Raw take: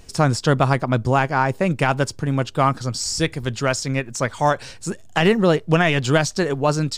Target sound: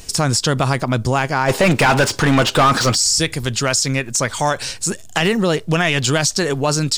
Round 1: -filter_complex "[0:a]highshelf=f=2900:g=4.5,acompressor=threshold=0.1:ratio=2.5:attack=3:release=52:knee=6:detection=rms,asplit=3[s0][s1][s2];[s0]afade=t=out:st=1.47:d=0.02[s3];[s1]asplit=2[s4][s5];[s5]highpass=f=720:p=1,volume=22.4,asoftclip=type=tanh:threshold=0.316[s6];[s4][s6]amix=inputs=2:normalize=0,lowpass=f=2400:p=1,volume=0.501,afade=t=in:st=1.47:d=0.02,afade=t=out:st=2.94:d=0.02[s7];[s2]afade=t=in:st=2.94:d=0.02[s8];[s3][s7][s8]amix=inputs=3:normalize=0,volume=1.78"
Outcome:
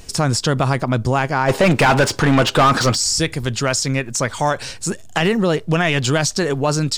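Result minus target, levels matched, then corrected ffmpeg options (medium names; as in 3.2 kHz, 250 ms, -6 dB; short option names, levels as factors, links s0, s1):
8 kHz band -2.5 dB
-filter_complex "[0:a]highshelf=f=2900:g=11.5,acompressor=threshold=0.1:ratio=2.5:attack=3:release=52:knee=6:detection=rms,asplit=3[s0][s1][s2];[s0]afade=t=out:st=1.47:d=0.02[s3];[s1]asplit=2[s4][s5];[s5]highpass=f=720:p=1,volume=22.4,asoftclip=type=tanh:threshold=0.316[s6];[s4][s6]amix=inputs=2:normalize=0,lowpass=f=2400:p=1,volume=0.501,afade=t=in:st=1.47:d=0.02,afade=t=out:st=2.94:d=0.02[s7];[s2]afade=t=in:st=2.94:d=0.02[s8];[s3][s7][s8]amix=inputs=3:normalize=0,volume=1.78"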